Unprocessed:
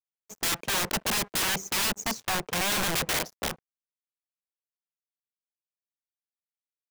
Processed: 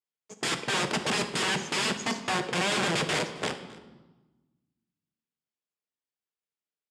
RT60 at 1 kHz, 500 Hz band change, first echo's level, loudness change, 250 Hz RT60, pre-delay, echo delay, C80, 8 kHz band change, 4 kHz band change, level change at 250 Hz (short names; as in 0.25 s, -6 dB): 1.2 s, +4.0 dB, -21.5 dB, -1.0 dB, 1.7 s, 6 ms, 0.267 s, 12.0 dB, -5.0 dB, 0.0 dB, +3.5 dB